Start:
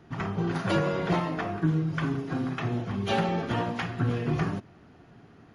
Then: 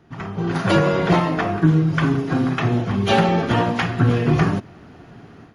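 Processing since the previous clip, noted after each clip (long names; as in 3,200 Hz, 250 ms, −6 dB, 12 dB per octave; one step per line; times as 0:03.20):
automatic gain control gain up to 10.5 dB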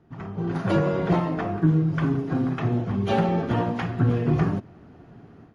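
tilt shelving filter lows +5 dB, about 1,300 Hz
level −9 dB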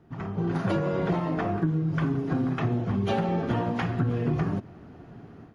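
downward compressor, threshold −24 dBFS, peak gain reduction 9.5 dB
level +1.5 dB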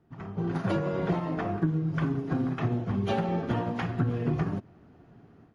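expander for the loud parts 1.5 to 1, over −38 dBFS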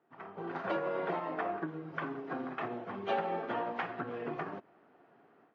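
band-pass filter 500–2,600 Hz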